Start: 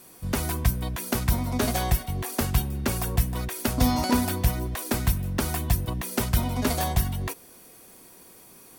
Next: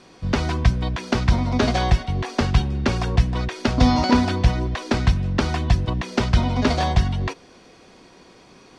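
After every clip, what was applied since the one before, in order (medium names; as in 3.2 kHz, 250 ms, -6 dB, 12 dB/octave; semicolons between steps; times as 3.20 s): low-pass 5.3 kHz 24 dB/octave; trim +6 dB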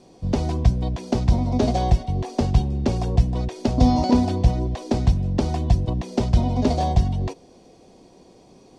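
FFT filter 750 Hz 0 dB, 1.4 kHz -16 dB, 7.6 kHz -2 dB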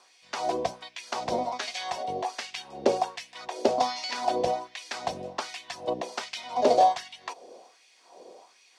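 LFO high-pass sine 1.3 Hz 480–2300 Hz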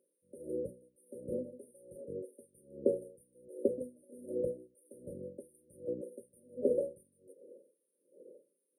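brick-wall FIR band-stop 590–8800 Hz; trim -5 dB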